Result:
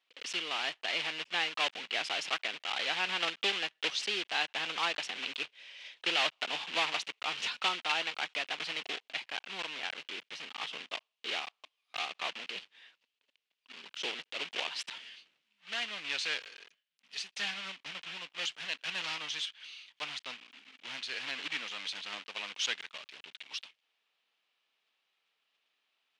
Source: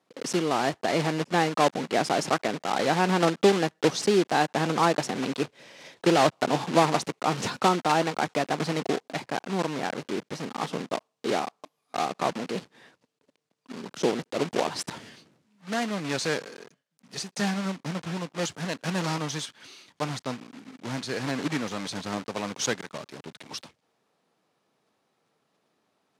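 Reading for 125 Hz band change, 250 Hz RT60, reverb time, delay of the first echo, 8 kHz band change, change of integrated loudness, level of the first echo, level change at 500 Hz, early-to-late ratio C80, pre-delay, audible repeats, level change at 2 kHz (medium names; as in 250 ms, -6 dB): -28.5 dB, no reverb, no reverb, no echo, -9.5 dB, -7.5 dB, no echo, -18.5 dB, no reverb, no reverb, no echo, -2.0 dB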